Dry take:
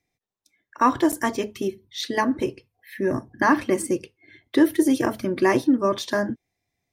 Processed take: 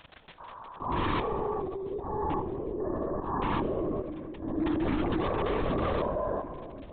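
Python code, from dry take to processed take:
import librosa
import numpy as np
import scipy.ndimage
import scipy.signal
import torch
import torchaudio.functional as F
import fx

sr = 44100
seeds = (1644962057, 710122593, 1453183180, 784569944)

p1 = fx.spec_steps(x, sr, hold_ms=400)
p2 = scipy.signal.sosfilt(scipy.signal.ellip(3, 1.0, 40, [250.0, 1100.0], 'bandpass', fs=sr, output='sos'), p1)
p3 = fx.tilt_shelf(p2, sr, db=-6.5, hz=800.0)
p4 = p3 + 0.85 * np.pad(p3, (int(7.0 * sr / 1000.0), 0))[:len(p3)]
p5 = fx.auto_swell(p4, sr, attack_ms=255.0)
p6 = fx.dmg_crackle(p5, sr, seeds[0], per_s=19.0, level_db=-42.0)
p7 = (np.mod(10.0 ** (22.5 / 20.0) * p6 + 1.0, 2.0) - 1.0) / 10.0 ** (22.5 / 20.0)
p8 = p6 + (p7 * 10.0 ** (-3.0 / 20.0))
p9 = fx.room_shoebox(p8, sr, seeds[1], volume_m3=2600.0, walls='mixed', distance_m=0.43)
p10 = fx.lpc_vocoder(p9, sr, seeds[2], excitation='whisper', order=16)
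p11 = fx.env_flatten(p10, sr, amount_pct=50)
y = p11 * 10.0 ** (-5.5 / 20.0)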